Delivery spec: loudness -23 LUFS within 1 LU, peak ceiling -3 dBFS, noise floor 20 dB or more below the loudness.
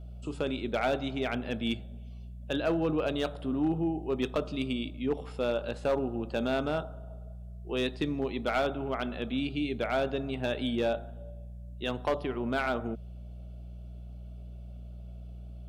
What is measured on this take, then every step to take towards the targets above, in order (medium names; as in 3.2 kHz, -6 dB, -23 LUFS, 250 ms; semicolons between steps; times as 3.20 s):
clipped samples 0.4%; clipping level -21.0 dBFS; hum 60 Hz; highest harmonic 180 Hz; hum level -41 dBFS; loudness -32.0 LUFS; peak level -21.0 dBFS; loudness target -23.0 LUFS
-> clip repair -21 dBFS; de-hum 60 Hz, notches 3; trim +9 dB